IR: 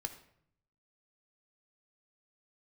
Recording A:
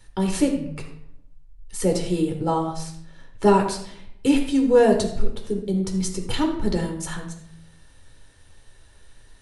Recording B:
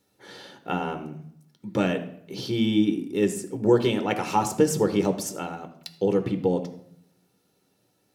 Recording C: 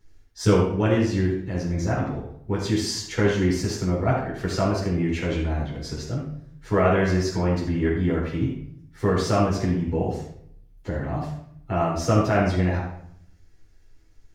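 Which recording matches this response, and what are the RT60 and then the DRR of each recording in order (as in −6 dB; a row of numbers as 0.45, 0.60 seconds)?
B; 0.65, 0.65, 0.65 seconds; 2.0, 7.5, −7.0 decibels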